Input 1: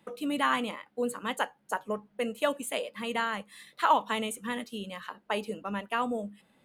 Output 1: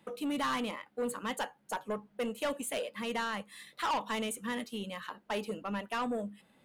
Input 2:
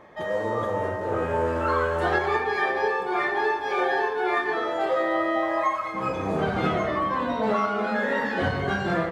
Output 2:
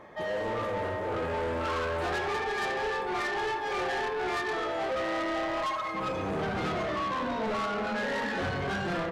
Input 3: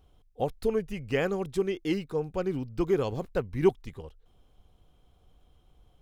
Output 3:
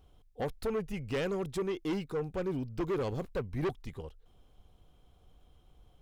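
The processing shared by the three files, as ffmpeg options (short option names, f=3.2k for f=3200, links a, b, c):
-af "asoftclip=type=tanh:threshold=-28dB"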